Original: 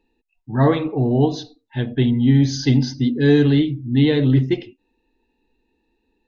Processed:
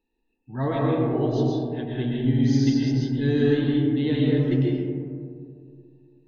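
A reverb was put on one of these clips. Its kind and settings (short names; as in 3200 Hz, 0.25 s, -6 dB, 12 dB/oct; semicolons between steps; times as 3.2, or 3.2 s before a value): digital reverb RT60 2.3 s, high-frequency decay 0.25×, pre-delay 85 ms, DRR -4 dB; gain -11 dB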